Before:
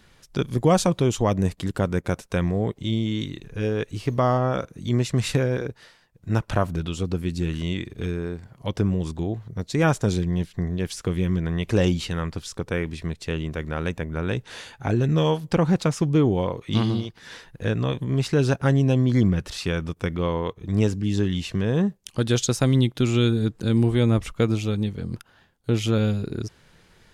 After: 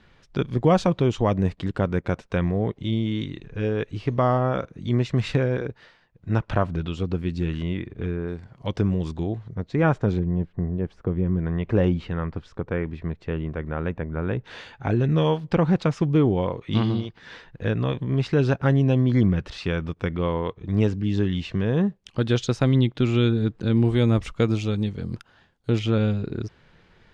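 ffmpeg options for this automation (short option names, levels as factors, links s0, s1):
-af "asetnsamples=n=441:p=0,asendcmd='7.63 lowpass f 2100;8.28 lowpass f 4800;9.55 lowpass f 2000;10.19 lowpass f 1000;11.39 lowpass f 1700;14.44 lowpass f 3500;23.85 lowpass f 6100;25.79 lowpass f 3400',lowpass=3400"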